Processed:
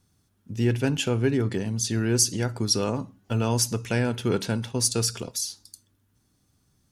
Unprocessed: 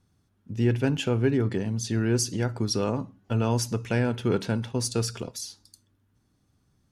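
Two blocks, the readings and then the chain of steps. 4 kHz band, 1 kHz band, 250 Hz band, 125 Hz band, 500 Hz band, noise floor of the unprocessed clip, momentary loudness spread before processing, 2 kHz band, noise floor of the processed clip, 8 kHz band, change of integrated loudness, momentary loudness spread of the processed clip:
+5.5 dB, +0.5 dB, 0.0 dB, 0.0 dB, 0.0 dB, -69 dBFS, 9 LU, +1.5 dB, -69 dBFS, +7.5 dB, +1.5 dB, 8 LU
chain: high shelf 4200 Hz +10 dB

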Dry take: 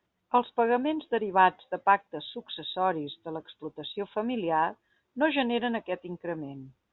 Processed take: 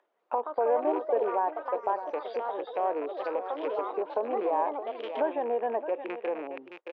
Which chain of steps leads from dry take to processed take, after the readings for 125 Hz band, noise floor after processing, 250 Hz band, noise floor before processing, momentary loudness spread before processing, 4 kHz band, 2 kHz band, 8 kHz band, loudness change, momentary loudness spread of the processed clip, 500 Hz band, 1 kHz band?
under -20 dB, -73 dBFS, -7.0 dB, -78 dBFS, 14 LU, -15.0 dB, -11.0 dB, n/a, -2.0 dB, 7 LU, +2.5 dB, -3.0 dB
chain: rattling part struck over -43 dBFS, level -23 dBFS; compressor 6:1, threshold -27 dBFS, peak gain reduction 12 dB; LPF 2900 Hz 6 dB/oct; echo 0.618 s -15.5 dB; limiter -24 dBFS, peak gain reduction 7.5 dB; echoes that change speed 0.196 s, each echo +4 st, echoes 3, each echo -6 dB; upward compressor, threshold -36 dBFS; gate -47 dBFS, range -25 dB; HPF 450 Hz 24 dB/oct; treble ducked by the level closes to 1100 Hz, closed at -35 dBFS; tilt shelf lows +7.5 dB, about 1400 Hz; gain +5 dB

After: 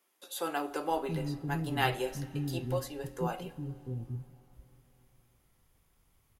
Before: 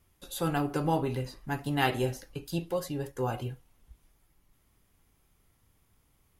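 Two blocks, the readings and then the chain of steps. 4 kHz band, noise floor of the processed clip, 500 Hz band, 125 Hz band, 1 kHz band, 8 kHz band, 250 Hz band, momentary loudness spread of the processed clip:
-1.5 dB, -71 dBFS, -2.5 dB, -1.5 dB, -1.5 dB, -1.5 dB, -3.5 dB, 11 LU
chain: bands offset in time highs, lows 0.68 s, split 300 Hz; plate-style reverb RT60 4.1 s, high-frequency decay 0.9×, DRR 18 dB; gain -1.5 dB

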